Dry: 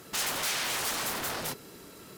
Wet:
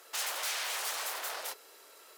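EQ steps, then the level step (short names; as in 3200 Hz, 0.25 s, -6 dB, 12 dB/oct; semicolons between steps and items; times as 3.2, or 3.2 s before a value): HPF 500 Hz 24 dB/oct; -4.0 dB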